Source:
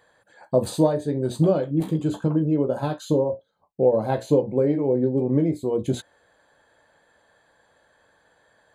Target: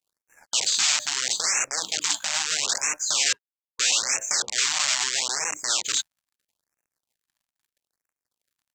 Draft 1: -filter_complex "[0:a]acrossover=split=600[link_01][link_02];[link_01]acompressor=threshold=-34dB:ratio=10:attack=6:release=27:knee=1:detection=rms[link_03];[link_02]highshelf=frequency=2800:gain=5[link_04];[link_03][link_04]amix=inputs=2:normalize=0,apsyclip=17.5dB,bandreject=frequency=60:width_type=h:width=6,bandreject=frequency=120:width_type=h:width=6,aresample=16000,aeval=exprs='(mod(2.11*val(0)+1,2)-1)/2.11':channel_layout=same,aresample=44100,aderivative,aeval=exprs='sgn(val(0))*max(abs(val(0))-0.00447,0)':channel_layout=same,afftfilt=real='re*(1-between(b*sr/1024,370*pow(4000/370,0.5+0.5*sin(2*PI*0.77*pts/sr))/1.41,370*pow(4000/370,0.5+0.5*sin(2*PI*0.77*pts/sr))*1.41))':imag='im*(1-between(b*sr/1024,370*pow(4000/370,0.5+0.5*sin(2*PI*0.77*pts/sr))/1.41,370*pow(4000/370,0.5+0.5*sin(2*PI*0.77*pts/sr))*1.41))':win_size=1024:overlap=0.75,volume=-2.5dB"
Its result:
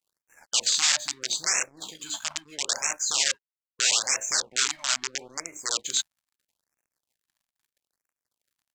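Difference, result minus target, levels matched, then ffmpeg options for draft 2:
downward compressor: peak gain reduction +7 dB
-filter_complex "[0:a]acrossover=split=600[link_01][link_02];[link_01]acompressor=threshold=-26dB:ratio=10:attack=6:release=27:knee=1:detection=rms[link_03];[link_02]highshelf=frequency=2800:gain=5[link_04];[link_03][link_04]amix=inputs=2:normalize=0,apsyclip=17.5dB,bandreject=frequency=60:width_type=h:width=6,bandreject=frequency=120:width_type=h:width=6,aresample=16000,aeval=exprs='(mod(2.11*val(0)+1,2)-1)/2.11':channel_layout=same,aresample=44100,aderivative,aeval=exprs='sgn(val(0))*max(abs(val(0))-0.00447,0)':channel_layout=same,afftfilt=real='re*(1-between(b*sr/1024,370*pow(4000/370,0.5+0.5*sin(2*PI*0.77*pts/sr))/1.41,370*pow(4000/370,0.5+0.5*sin(2*PI*0.77*pts/sr))*1.41))':imag='im*(1-between(b*sr/1024,370*pow(4000/370,0.5+0.5*sin(2*PI*0.77*pts/sr))/1.41,370*pow(4000/370,0.5+0.5*sin(2*PI*0.77*pts/sr))*1.41))':win_size=1024:overlap=0.75,volume=-2.5dB"

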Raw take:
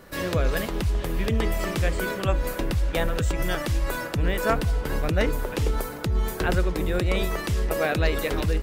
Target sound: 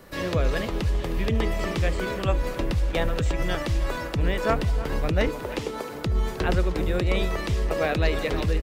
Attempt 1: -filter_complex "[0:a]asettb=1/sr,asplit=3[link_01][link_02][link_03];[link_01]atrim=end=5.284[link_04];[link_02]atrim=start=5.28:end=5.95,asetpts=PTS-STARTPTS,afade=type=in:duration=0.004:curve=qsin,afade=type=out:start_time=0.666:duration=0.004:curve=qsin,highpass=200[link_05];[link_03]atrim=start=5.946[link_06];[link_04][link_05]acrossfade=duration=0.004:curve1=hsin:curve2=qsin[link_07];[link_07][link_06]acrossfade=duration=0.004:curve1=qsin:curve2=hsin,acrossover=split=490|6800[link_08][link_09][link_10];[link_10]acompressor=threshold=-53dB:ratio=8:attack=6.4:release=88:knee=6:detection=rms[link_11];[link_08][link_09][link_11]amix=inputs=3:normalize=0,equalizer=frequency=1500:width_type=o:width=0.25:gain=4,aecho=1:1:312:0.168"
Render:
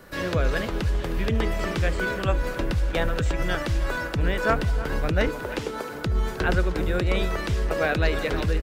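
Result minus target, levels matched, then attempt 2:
2,000 Hz band +3.0 dB
-filter_complex "[0:a]asettb=1/sr,asplit=3[link_01][link_02][link_03];[link_01]atrim=end=5.284[link_04];[link_02]atrim=start=5.28:end=5.95,asetpts=PTS-STARTPTS,afade=type=in:duration=0.004:curve=qsin,afade=type=out:start_time=0.666:duration=0.004:curve=qsin,highpass=200[link_05];[link_03]atrim=start=5.946[link_06];[link_04][link_05]acrossfade=duration=0.004:curve1=hsin:curve2=qsin[link_07];[link_07][link_06]acrossfade=duration=0.004:curve1=qsin:curve2=hsin,acrossover=split=490|6800[link_08][link_09][link_10];[link_10]acompressor=threshold=-53dB:ratio=8:attack=6.4:release=88:knee=6:detection=rms[link_11];[link_08][link_09][link_11]amix=inputs=3:normalize=0,equalizer=frequency=1500:width_type=o:width=0.25:gain=-4,aecho=1:1:312:0.168"

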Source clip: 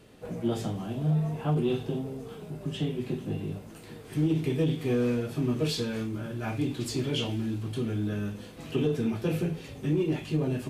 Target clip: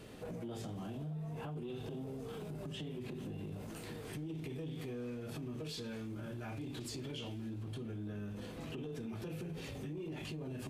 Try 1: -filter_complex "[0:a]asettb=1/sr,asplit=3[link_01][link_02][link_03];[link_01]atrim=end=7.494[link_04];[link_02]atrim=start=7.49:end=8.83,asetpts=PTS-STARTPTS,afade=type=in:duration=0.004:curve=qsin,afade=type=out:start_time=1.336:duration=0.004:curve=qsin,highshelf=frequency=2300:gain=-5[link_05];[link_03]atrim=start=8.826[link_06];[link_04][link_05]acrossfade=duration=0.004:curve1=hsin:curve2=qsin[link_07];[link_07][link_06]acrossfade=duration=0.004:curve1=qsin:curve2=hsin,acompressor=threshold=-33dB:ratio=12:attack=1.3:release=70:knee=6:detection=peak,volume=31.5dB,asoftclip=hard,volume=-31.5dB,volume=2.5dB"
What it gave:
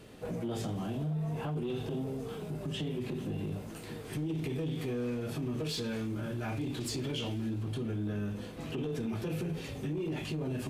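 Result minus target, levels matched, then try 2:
downward compressor: peak gain reduction −8.5 dB
-filter_complex "[0:a]asettb=1/sr,asplit=3[link_01][link_02][link_03];[link_01]atrim=end=7.494[link_04];[link_02]atrim=start=7.49:end=8.83,asetpts=PTS-STARTPTS,afade=type=in:duration=0.004:curve=qsin,afade=type=out:start_time=1.336:duration=0.004:curve=qsin,highshelf=frequency=2300:gain=-5[link_05];[link_03]atrim=start=8.826[link_06];[link_04][link_05]acrossfade=duration=0.004:curve1=hsin:curve2=qsin[link_07];[link_07][link_06]acrossfade=duration=0.004:curve1=qsin:curve2=hsin,acompressor=threshold=-42dB:ratio=12:attack=1.3:release=70:knee=6:detection=peak,volume=31.5dB,asoftclip=hard,volume=-31.5dB,volume=2.5dB"

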